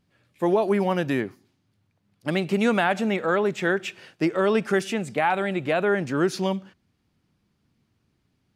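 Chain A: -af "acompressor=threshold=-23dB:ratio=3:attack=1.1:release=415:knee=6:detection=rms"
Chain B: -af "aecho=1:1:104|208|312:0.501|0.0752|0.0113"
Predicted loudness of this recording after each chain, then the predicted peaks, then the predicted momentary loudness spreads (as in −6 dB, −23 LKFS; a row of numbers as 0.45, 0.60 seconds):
−30.5, −23.0 LKFS; −15.5, −7.5 dBFS; 5, 7 LU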